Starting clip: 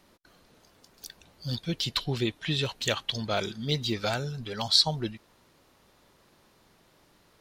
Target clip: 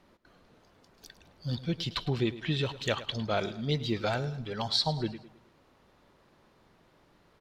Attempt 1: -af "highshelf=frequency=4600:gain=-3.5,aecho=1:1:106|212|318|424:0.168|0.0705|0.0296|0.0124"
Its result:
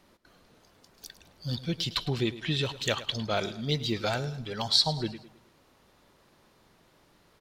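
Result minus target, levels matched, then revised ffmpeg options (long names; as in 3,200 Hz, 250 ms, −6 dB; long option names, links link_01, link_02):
8,000 Hz band +5.0 dB
-af "highshelf=frequency=4600:gain=-14.5,aecho=1:1:106|212|318|424:0.168|0.0705|0.0296|0.0124"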